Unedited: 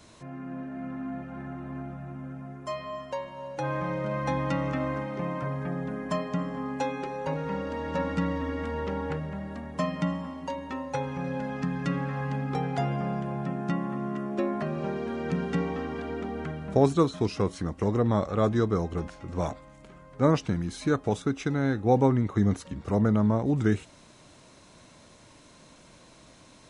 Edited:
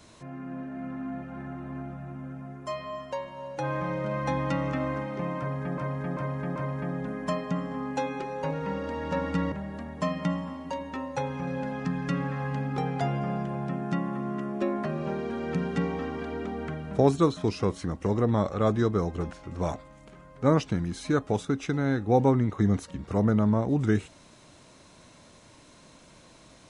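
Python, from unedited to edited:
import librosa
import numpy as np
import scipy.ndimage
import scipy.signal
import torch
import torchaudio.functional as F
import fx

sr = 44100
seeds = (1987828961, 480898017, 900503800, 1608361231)

y = fx.edit(x, sr, fx.repeat(start_s=5.39, length_s=0.39, count=4),
    fx.cut(start_s=8.35, length_s=0.94), tone=tone)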